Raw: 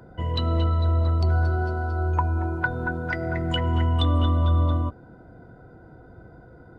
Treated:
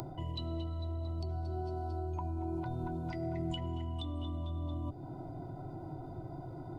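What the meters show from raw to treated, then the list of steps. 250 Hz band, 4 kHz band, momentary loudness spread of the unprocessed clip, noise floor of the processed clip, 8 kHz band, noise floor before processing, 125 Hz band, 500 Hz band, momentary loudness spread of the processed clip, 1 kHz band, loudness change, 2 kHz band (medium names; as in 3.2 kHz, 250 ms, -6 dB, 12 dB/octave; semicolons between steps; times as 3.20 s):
-9.5 dB, -14.0 dB, 6 LU, -46 dBFS, no reading, -49 dBFS, -15.0 dB, -11.0 dB, 7 LU, -13.5 dB, -15.5 dB, -26.5 dB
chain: dynamic bell 1.1 kHz, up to -7 dB, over -45 dBFS, Q 1.3; reverse; compression, threshold -31 dBFS, peak gain reduction 13 dB; reverse; peak limiter -29.5 dBFS, peak gain reduction 6.5 dB; upward compressor, threshold -39 dBFS; static phaser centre 320 Hz, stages 8; trim +4 dB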